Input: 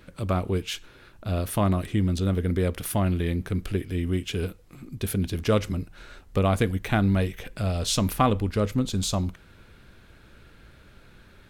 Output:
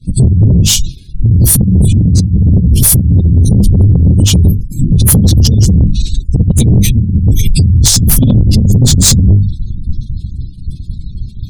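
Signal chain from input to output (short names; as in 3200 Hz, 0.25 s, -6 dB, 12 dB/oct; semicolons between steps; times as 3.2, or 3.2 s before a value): phase scrambler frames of 50 ms; Chebyshev band-stop 150–5700 Hz, order 2; notches 50/100/150/200/250/300/350/400/450 Hz; spectral gate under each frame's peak -30 dB strong; expander -46 dBFS; low shelf 140 Hz +4.5 dB; negative-ratio compressor -30 dBFS, ratio -0.5; soft clip -27 dBFS, distortion -12 dB; maximiser +34.5 dB; gain -1 dB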